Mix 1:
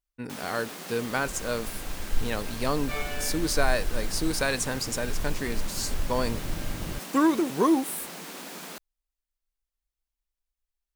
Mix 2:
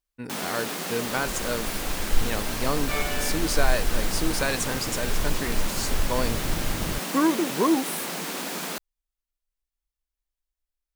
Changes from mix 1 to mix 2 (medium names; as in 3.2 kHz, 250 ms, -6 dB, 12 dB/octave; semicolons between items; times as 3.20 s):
first sound +8.5 dB; second sound +4.0 dB